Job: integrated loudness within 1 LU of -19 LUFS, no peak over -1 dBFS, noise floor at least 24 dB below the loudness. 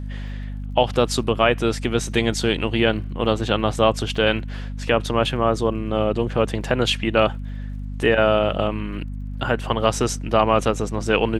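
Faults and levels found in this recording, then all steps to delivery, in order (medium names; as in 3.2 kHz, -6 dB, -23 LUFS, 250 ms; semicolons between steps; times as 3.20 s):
tick rate 33 per s; hum 50 Hz; highest harmonic 250 Hz; hum level -27 dBFS; loudness -21.0 LUFS; peak level -1.5 dBFS; loudness target -19.0 LUFS
-> de-click; de-hum 50 Hz, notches 5; trim +2 dB; peak limiter -1 dBFS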